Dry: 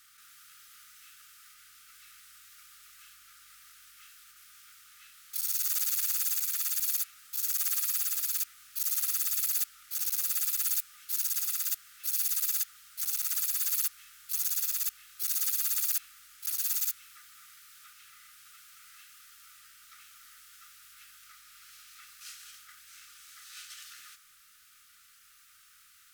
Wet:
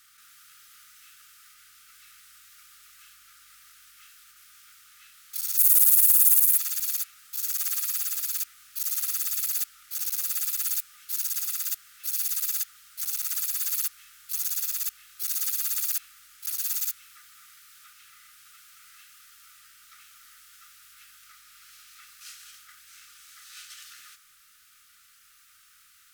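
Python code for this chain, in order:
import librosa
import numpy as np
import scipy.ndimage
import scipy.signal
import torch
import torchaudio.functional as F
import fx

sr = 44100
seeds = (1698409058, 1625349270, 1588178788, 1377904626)

y = fx.high_shelf_res(x, sr, hz=7700.0, db=10.0, q=1.5, at=(5.57, 6.58))
y = F.gain(torch.from_numpy(y), 1.5).numpy()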